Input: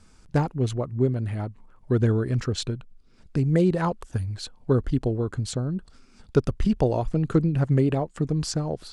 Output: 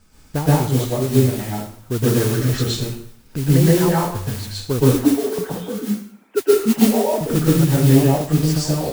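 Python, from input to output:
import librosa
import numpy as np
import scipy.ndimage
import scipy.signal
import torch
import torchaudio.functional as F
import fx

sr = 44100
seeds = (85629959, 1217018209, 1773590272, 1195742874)

y = fx.sine_speech(x, sr, at=(4.84, 7.21))
y = fx.mod_noise(y, sr, seeds[0], snr_db=14)
y = fx.rev_plate(y, sr, seeds[1], rt60_s=0.58, hf_ratio=0.9, predelay_ms=105, drr_db=-7.0)
y = F.gain(torch.from_numpy(y), -1.0).numpy()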